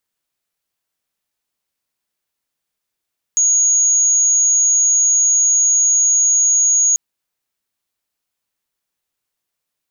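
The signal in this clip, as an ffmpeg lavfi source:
ffmpeg -f lavfi -i "aevalsrc='0.299*sin(2*PI*6670*t)':duration=3.59:sample_rate=44100" out.wav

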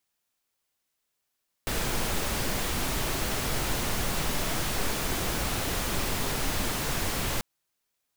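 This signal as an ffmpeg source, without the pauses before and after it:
ffmpeg -f lavfi -i "anoisesrc=color=pink:amplitude=0.193:duration=5.74:sample_rate=44100:seed=1" out.wav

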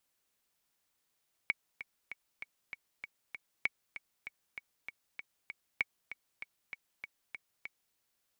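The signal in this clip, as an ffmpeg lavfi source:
ffmpeg -f lavfi -i "aevalsrc='pow(10,(-16-13*gte(mod(t,7*60/195),60/195))/20)*sin(2*PI*2240*mod(t,60/195))*exp(-6.91*mod(t,60/195)/0.03)':duration=6.46:sample_rate=44100" out.wav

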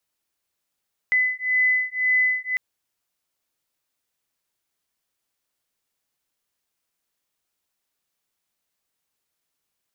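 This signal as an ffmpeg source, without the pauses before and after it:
ffmpeg -f lavfi -i "aevalsrc='0.0841*(sin(2*PI*2010*t)+sin(2*PI*2011.9*t))':duration=1.45:sample_rate=44100" out.wav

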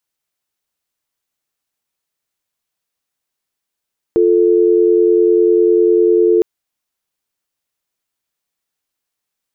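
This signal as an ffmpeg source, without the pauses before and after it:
ffmpeg -f lavfi -i "aevalsrc='0.282*(sin(2*PI*350*t)+sin(2*PI*440*t))':duration=2.26:sample_rate=44100" out.wav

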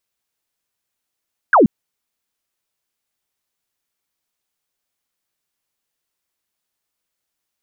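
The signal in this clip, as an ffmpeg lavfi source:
ffmpeg -f lavfi -i "aevalsrc='0.447*clip(t/0.002,0,1)*clip((0.13-t)/0.002,0,1)*sin(2*PI*1700*0.13/log(180/1700)*(exp(log(180/1700)*t/0.13)-1))':duration=0.13:sample_rate=44100" out.wav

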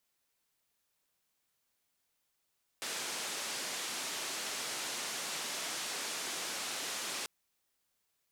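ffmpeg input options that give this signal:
ffmpeg -f lavfi -i "anoisesrc=color=white:duration=4.44:sample_rate=44100:seed=1,highpass=frequency=230,lowpass=frequency=7800,volume=-29.7dB" out.wav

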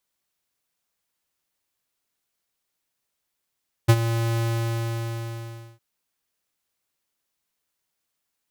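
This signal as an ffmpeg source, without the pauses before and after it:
ffmpeg -f lavfi -i "aevalsrc='0.266*(2*lt(mod(115*t,1),0.5)-1)':duration=1.91:sample_rate=44100,afade=type=in:duration=0.017,afade=type=out:start_time=0.017:duration=0.054:silence=0.251,afade=type=out:start_time=0.51:duration=1.4" out.wav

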